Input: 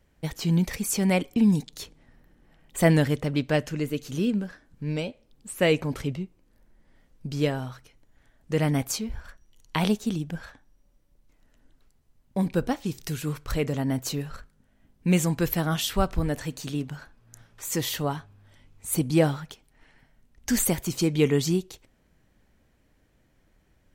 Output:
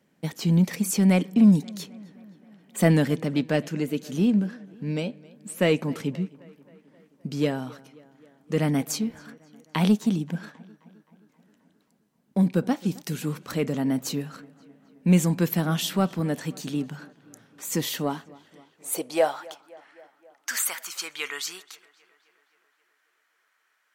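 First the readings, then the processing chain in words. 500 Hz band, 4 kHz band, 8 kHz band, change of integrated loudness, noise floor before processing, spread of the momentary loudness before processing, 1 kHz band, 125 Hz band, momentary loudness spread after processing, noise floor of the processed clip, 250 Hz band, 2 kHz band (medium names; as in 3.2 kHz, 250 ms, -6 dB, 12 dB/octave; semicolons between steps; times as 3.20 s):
-0.5 dB, -0.5 dB, -0.5 dB, +1.0 dB, -65 dBFS, 16 LU, 0.0 dB, +0.5 dB, 17 LU, -70 dBFS, +2.5 dB, -0.5 dB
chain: bass shelf 74 Hz -11 dB; high-pass sweep 190 Hz -> 1.3 kHz, 17.93–19.97 s; in parallel at -6.5 dB: saturation -17.5 dBFS, distortion -10 dB; on the sum: tape echo 264 ms, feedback 69%, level -21.5 dB, low-pass 3.8 kHz; trim -3.5 dB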